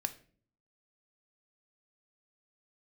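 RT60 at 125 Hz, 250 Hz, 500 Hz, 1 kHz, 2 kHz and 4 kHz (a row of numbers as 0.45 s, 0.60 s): 0.80 s, 0.75 s, 0.55 s, 0.40 s, 0.40 s, 0.35 s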